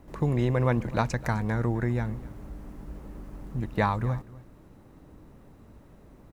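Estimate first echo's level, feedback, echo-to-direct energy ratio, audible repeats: -20.0 dB, no regular repeats, -20.0 dB, 1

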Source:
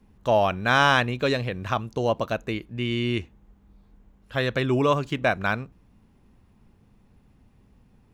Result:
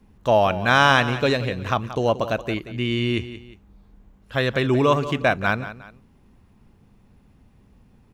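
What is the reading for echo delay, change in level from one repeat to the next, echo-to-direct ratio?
179 ms, -9.0 dB, -13.0 dB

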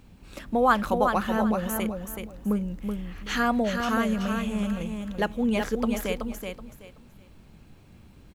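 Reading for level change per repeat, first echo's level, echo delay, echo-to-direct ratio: -12.5 dB, -5.5 dB, 377 ms, -5.0 dB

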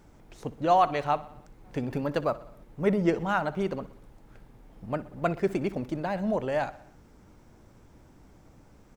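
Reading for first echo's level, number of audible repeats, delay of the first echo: -18.5 dB, 4, 62 ms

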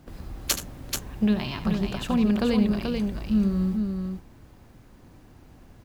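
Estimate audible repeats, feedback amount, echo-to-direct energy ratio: 2, no regular repeats, -4.0 dB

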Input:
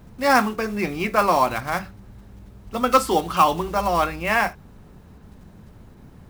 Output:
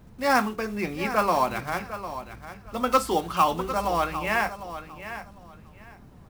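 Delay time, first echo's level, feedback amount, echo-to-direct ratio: 752 ms, -12.0 dB, 21%, -12.0 dB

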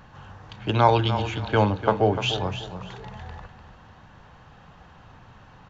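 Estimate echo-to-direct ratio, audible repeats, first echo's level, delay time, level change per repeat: -10.5 dB, 3, -11.0 dB, 297 ms, -11.0 dB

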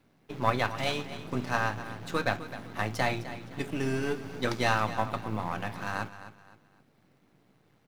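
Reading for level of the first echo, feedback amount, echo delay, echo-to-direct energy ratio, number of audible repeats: -13.5 dB, 32%, 258 ms, -13.0 dB, 3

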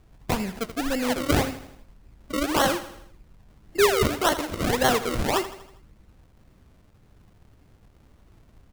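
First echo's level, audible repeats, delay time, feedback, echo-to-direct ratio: -13.5 dB, 4, 80 ms, 51%, -12.0 dB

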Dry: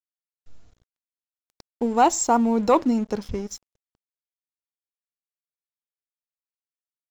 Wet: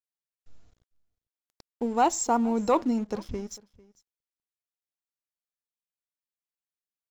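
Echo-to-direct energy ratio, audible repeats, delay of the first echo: -23.0 dB, 1, 448 ms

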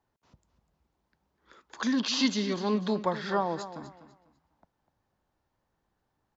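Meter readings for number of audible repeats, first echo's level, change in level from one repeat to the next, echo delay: 2, -13.0 dB, -11.5 dB, 248 ms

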